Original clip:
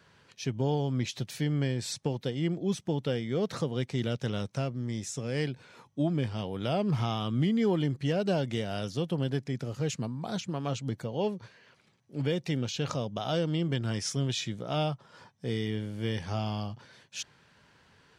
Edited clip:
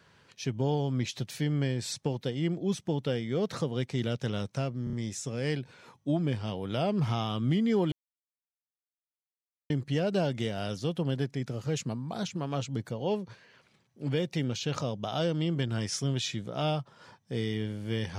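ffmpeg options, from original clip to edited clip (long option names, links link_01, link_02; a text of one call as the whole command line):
ffmpeg -i in.wav -filter_complex "[0:a]asplit=5[link_01][link_02][link_03][link_04][link_05];[link_01]atrim=end=4.872[link_06];[link_02]atrim=start=4.838:end=4.872[link_07];[link_03]atrim=start=4.838:end=4.872[link_08];[link_04]atrim=start=4.838:end=7.83,asetpts=PTS-STARTPTS,afade=type=out:start_time=2.988:duration=0.004:curve=hsin,apad=pad_dur=1.78[link_09];[link_05]atrim=start=7.83,asetpts=PTS-STARTPTS,afade=type=in:duration=0.004:curve=hsin[link_10];[link_06][link_07]acrossfade=duration=0.004:curve1=hsin:curve2=hsin[link_11];[link_11][link_08]acrossfade=duration=0.004:curve1=hsin:curve2=hsin[link_12];[link_09][link_10]concat=n=2:v=0:a=1[link_13];[link_12][link_13]acrossfade=duration=0.004:curve1=hsin:curve2=hsin" out.wav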